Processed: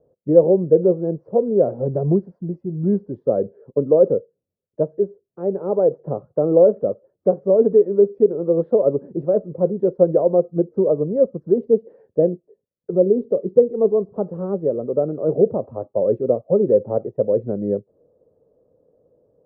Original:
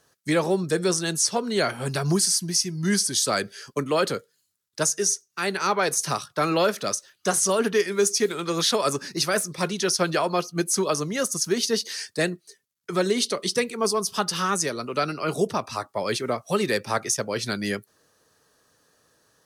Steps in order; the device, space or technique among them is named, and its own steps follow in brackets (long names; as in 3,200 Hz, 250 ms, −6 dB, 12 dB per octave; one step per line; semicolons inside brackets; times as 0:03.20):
0:12.90–0:13.46: parametric band 1,900 Hz −10.5 dB → −2.5 dB 2.2 octaves
under water (low-pass filter 590 Hz 24 dB per octave; parametric band 520 Hz +11 dB 0.55 octaves)
level +4 dB